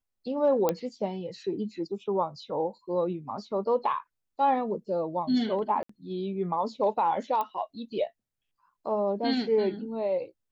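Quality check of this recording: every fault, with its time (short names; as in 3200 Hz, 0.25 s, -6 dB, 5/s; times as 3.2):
0.69 pop -12 dBFS
5.83–5.89 gap 64 ms
7.41 pop -18 dBFS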